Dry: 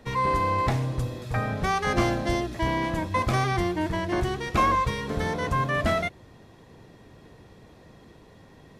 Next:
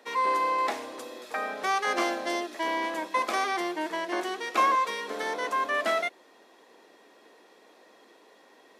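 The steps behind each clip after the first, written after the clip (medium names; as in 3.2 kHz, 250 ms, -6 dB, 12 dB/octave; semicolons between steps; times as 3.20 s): Bessel high-pass 460 Hz, order 8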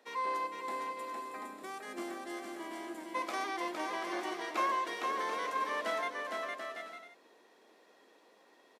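time-frequency box 0.47–3.15 s, 400–6800 Hz -9 dB; on a send: bouncing-ball echo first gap 460 ms, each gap 0.6×, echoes 5; on the sum: trim -9 dB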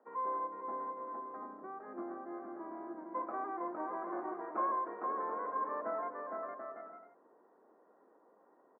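steep low-pass 1.4 kHz 36 dB/octave; trim -1.5 dB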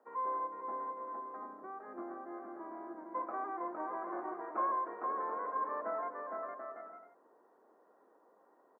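bass shelf 290 Hz -7 dB; trim +1 dB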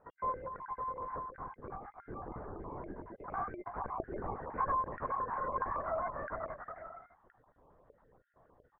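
random holes in the spectrogram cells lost 30%; LPC vocoder at 8 kHz whisper; trim +2.5 dB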